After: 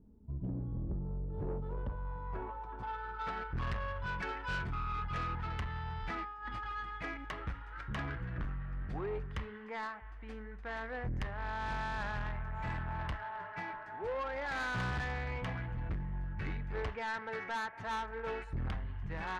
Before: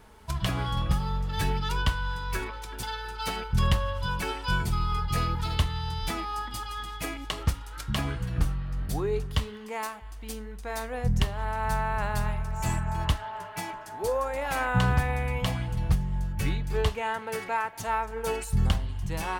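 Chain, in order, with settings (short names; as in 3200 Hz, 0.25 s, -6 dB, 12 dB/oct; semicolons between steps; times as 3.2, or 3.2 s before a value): low-pass sweep 250 Hz -> 1800 Hz, 0.59–3.59; 6.23–6.72 negative-ratio compressor -33 dBFS, ratio -0.5; soft clip -25.5 dBFS, distortion -9 dB; gain -7 dB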